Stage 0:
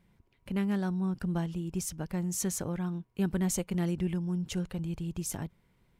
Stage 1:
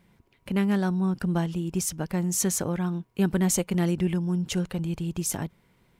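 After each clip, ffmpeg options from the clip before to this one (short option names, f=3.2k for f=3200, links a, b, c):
-af "lowshelf=f=100:g=-8.5,volume=7.5dB"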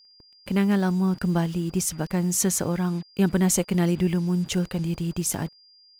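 -af "acrusher=bits=7:mix=0:aa=0.5,aeval=exprs='val(0)+0.00178*sin(2*PI*4800*n/s)':c=same,volume=2.5dB"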